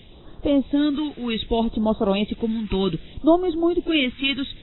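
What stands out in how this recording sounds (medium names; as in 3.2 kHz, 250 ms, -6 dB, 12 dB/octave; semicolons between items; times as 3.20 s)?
a quantiser's noise floor 8-bit, dither triangular; phasing stages 2, 0.65 Hz, lowest notch 590–2300 Hz; AAC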